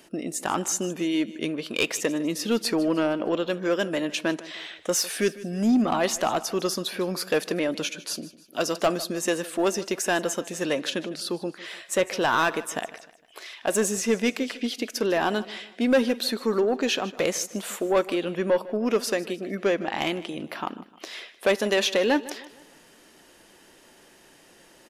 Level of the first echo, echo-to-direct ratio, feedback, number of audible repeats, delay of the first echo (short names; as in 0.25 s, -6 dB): -18.0 dB, -17.0 dB, 43%, 3, 0.153 s